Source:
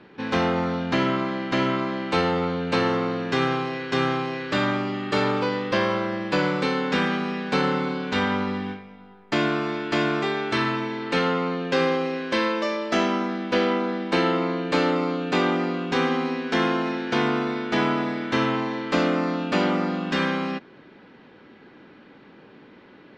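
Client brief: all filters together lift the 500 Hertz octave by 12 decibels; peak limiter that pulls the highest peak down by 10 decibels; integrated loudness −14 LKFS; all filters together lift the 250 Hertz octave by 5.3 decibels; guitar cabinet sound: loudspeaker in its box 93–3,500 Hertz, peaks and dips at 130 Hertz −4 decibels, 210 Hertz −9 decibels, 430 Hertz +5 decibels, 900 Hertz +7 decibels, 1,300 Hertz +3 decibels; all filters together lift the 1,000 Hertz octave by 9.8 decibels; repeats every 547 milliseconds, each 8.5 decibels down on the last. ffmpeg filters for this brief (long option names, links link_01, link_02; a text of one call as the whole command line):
ffmpeg -i in.wav -af "equalizer=frequency=250:width_type=o:gain=5.5,equalizer=frequency=500:width_type=o:gain=8.5,equalizer=frequency=1000:width_type=o:gain=4,alimiter=limit=-10.5dB:level=0:latency=1,highpass=93,equalizer=frequency=130:width_type=q:width=4:gain=-4,equalizer=frequency=210:width_type=q:width=4:gain=-9,equalizer=frequency=430:width_type=q:width=4:gain=5,equalizer=frequency=900:width_type=q:width=4:gain=7,equalizer=frequency=1300:width_type=q:width=4:gain=3,lowpass=frequency=3500:width=0.5412,lowpass=frequency=3500:width=1.3066,aecho=1:1:547|1094|1641|2188:0.376|0.143|0.0543|0.0206,volume=4dB" out.wav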